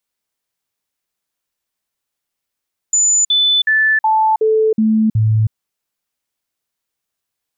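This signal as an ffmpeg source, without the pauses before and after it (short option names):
-f lavfi -i "aevalsrc='0.316*clip(min(mod(t,0.37),0.32-mod(t,0.37))/0.005,0,1)*sin(2*PI*7000*pow(2,-floor(t/0.37)/1)*mod(t,0.37))':d=2.59:s=44100"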